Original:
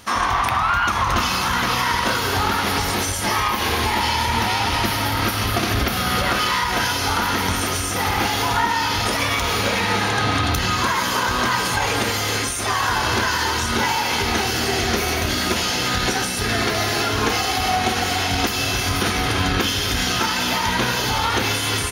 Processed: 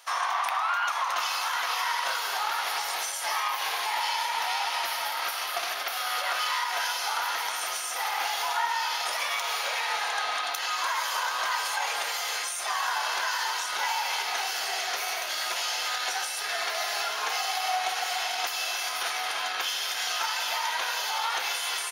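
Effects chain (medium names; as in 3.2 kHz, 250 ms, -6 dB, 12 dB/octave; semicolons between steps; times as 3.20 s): Chebyshev high-pass 680 Hz, order 3; trim -7 dB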